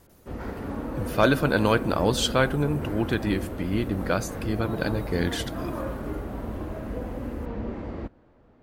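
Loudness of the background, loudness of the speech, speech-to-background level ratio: −34.0 LKFS, −26.0 LKFS, 8.0 dB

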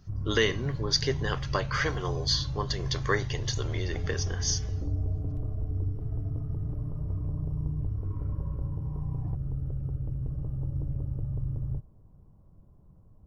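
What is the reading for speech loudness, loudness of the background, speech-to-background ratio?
−30.5 LKFS, −34.0 LKFS, 3.5 dB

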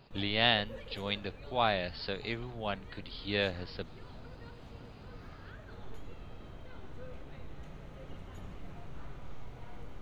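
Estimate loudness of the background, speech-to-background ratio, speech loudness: −50.5 LKFS, 17.0 dB, −33.5 LKFS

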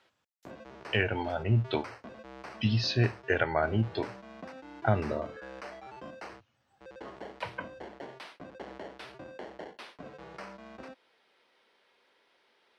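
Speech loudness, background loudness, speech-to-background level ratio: −30.5 LKFS, −46.5 LKFS, 16.0 dB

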